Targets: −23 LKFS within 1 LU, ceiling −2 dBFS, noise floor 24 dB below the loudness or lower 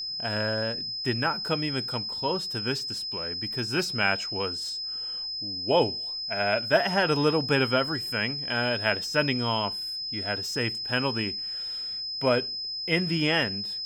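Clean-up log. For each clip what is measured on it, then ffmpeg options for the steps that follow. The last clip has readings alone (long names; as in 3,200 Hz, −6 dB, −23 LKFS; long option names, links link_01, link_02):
interfering tone 5,100 Hz; level of the tone −31 dBFS; integrated loudness −26.5 LKFS; sample peak −8.0 dBFS; target loudness −23.0 LKFS
→ -af "bandreject=frequency=5100:width=30"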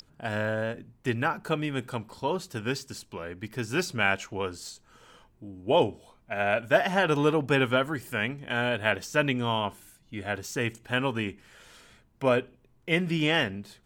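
interfering tone none found; integrated loudness −28.0 LKFS; sample peak −8.5 dBFS; target loudness −23.0 LKFS
→ -af "volume=5dB"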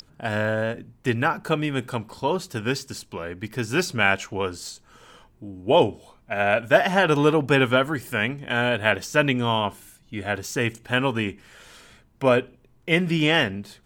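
integrated loudness −23.0 LKFS; sample peak −3.5 dBFS; background noise floor −58 dBFS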